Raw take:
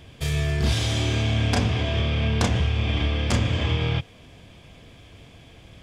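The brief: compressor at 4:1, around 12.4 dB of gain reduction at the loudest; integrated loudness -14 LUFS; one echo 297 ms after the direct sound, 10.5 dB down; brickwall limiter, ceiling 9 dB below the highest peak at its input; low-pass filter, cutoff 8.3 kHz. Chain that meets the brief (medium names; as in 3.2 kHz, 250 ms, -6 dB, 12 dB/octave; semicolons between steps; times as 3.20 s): low-pass 8.3 kHz; compression 4:1, threshold -33 dBFS; peak limiter -27.5 dBFS; delay 297 ms -10.5 dB; trim +22.5 dB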